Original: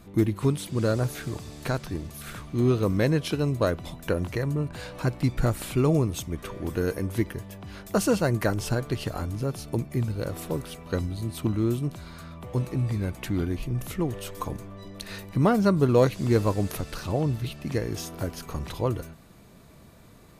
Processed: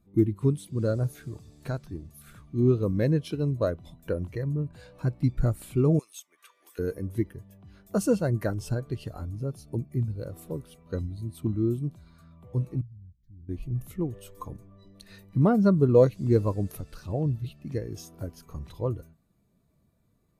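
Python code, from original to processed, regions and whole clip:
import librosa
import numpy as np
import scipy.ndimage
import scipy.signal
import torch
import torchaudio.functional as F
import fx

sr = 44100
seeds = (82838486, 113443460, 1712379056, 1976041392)

y = fx.chain(x, sr, fx.highpass(hz=1200.0, slope=12),
    fx.band_squash(depth_pct=70), at=(5.99, 6.79))
y = fx.chain(y, sr, fx.tone_stack(knobs='10-0-1'),
    fx.fixed_phaser(hz=2700.0, stages=6), at=(12.81, 13.49))
y = fx.high_shelf(y, sr, hz=5400.0, db=7.5)
y = fx.spectral_expand(y, sr, expansion=1.5)
y = y * librosa.db_to_amplitude(1.0)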